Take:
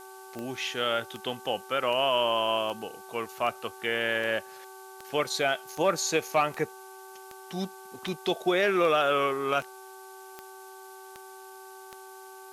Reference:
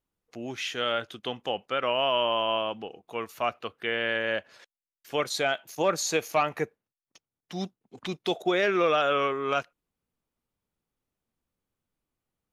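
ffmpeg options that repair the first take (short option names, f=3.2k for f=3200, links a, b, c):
-af "adeclick=t=4,bandreject=f=382.9:t=h:w=4,bandreject=f=765.8:t=h:w=4,bandreject=f=1.1487k:t=h:w=4,bandreject=f=1.5316k:t=h:w=4,bandreject=f=880:w=30,afftdn=nr=30:nf=-47"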